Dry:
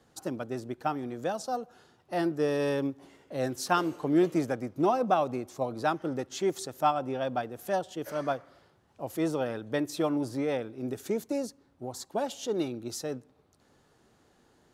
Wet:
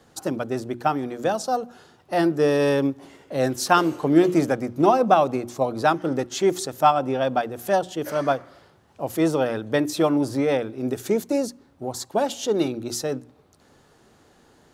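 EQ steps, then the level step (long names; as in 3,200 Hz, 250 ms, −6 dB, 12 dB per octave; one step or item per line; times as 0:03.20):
mains-hum notches 60/120/180/240/300/360 Hz
+8.5 dB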